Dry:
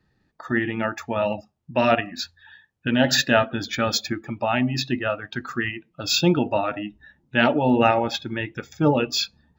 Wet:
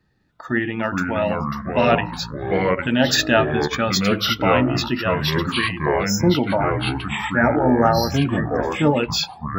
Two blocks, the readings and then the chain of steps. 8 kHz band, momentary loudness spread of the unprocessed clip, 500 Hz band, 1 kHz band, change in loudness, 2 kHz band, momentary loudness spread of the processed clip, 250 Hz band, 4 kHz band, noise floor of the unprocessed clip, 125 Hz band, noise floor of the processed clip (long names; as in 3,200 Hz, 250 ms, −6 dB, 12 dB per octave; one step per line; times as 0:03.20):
+2.0 dB, 12 LU, +3.5 dB, +3.5 dB, +3.0 dB, +3.0 dB, 7 LU, +3.5 dB, +2.5 dB, −69 dBFS, +6.0 dB, −41 dBFS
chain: time-frequency box erased 0:06.06–0:08.61, 1,900–5,100 Hz
delay with pitch and tempo change per echo 290 ms, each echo −4 semitones, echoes 3
level +1.5 dB